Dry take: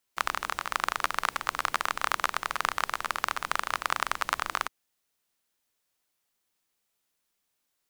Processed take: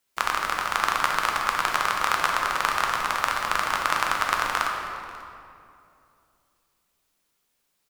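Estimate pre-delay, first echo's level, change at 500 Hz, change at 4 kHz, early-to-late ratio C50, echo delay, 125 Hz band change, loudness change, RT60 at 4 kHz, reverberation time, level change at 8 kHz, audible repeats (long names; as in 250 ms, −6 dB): 7 ms, −20.5 dB, +6.5 dB, +5.5 dB, 2.0 dB, 540 ms, +7.5 dB, +6.0 dB, 1.7 s, 2.6 s, +5.0 dB, 1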